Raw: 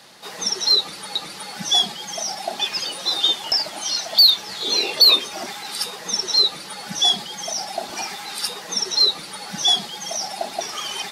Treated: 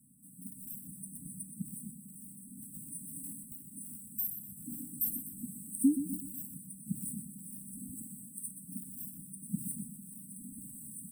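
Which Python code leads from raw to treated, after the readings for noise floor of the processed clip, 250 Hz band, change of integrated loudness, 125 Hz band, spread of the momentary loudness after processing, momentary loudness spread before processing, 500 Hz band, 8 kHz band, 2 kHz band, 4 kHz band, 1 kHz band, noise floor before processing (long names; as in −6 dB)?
−53 dBFS, +2.0 dB, −20.0 dB, can't be measured, 13 LU, 16 LU, below −30 dB, −14.0 dB, below −40 dB, below −40 dB, below −40 dB, −37 dBFS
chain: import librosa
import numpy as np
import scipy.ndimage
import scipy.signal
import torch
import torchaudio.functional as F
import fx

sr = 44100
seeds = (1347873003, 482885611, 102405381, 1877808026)

p1 = scipy.signal.medfilt(x, 3)
p2 = fx.spec_paint(p1, sr, seeds[0], shape='rise', start_s=5.84, length_s=1.32, low_hz=260.0, high_hz=3400.0, level_db=-16.0)
p3 = fx.tremolo_random(p2, sr, seeds[1], hz=3.5, depth_pct=55)
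p4 = fx.brickwall_bandstop(p3, sr, low_hz=290.0, high_hz=7800.0)
y = p4 + fx.echo_feedback(p4, sr, ms=124, feedback_pct=43, wet_db=-9.5, dry=0)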